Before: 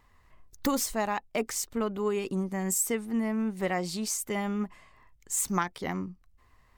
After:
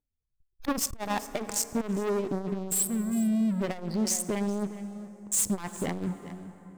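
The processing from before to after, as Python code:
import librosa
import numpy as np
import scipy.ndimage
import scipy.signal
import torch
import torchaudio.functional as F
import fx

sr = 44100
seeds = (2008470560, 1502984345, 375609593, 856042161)

y = fx.wiener(x, sr, points=41)
y = fx.spec_gate(y, sr, threshold_db=-25, keep='strong')
y = fx.noise_reduce_blind(y, sr, reduce_db=7)
y = fx.spec_box(y, sr, start_s=2.72, length_s=0.89, low_hz=220.0, high_hz=7400.0, gain_db=-25)
y = fx.leveller(y, sr, passes=5)
y = y + 10.0 ** (-17.5 / 20.0) * np.pad(y, (int(408 * sr / 1000.0), 0))[:len(y)]
y = fx.rev_plate(y, sr, seeds[0], rt60_s=4.0, hf_ratio=0.55, predelay_ms=0, drr_db=15.0)
y = fx.transformer_sat(y, sr, knee_hz=150.0)
y = y * librosa.db_to_amplitude(-7.0)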